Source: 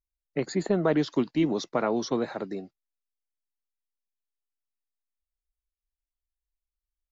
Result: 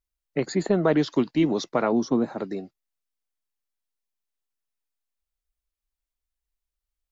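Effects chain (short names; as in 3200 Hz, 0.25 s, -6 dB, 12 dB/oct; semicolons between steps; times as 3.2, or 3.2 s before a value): 1.92–2.38 ten-band EQ 250 Hz +6 dB, 500 Hz -4 dB, 2000 Hz -9 dB, 4000 Hz -9 dB; gain +3 dB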